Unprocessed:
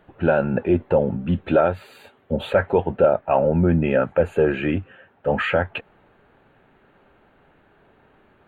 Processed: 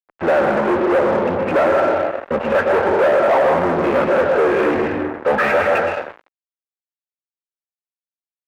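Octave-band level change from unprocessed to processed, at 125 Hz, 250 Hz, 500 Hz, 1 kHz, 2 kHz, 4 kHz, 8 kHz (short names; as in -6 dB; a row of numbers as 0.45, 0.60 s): -7.0 dB, +1.0 dB, +5.0 dB, +8.5 dB, +7.5 dB, +3.0 dB, n/a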